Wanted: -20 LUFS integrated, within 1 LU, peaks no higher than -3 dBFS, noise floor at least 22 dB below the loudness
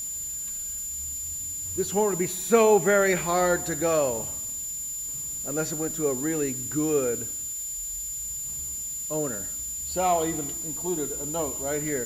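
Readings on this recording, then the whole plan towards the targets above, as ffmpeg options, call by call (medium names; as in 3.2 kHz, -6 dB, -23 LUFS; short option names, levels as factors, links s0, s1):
steady tone 7.1 kHz; tone level -31 dBFS; noise floor -34 dBFS; noise floor target -49 dBFS; loudness -26.5 LUFS; peak level -7.5 dBFS; loudness target -20.0 LUFS
-> -af "bandreject=f=7100:w=30"
-af "afftdn=nr=15:nf=-34"
-af "volume=2.11,alimiter=limit=0.708:level=0:latency=1"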